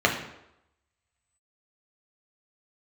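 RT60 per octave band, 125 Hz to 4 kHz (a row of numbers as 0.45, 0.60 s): 0.70, 0.75, 0.85, 0.85, 0.75, 0.65 s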